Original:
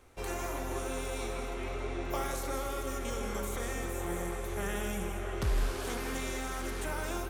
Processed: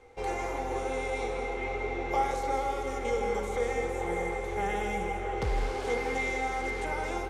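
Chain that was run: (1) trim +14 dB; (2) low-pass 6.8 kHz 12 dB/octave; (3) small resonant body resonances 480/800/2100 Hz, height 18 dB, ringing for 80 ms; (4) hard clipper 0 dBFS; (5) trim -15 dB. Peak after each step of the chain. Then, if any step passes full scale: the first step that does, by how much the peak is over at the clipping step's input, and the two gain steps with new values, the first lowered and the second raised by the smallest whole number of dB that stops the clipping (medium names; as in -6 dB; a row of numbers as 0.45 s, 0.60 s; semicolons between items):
-7.0 dBFS, -7.0 dBFS, -2.5 dBFS, -2.5 dBFS, -17.5 dBFS; nothing clips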